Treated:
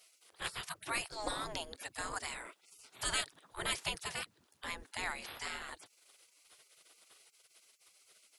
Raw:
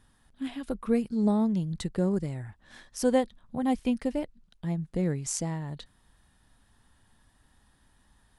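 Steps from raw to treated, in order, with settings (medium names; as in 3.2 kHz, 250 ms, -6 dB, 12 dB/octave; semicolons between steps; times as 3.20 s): spectral gate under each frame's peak -30 dB weak; trim +13 dB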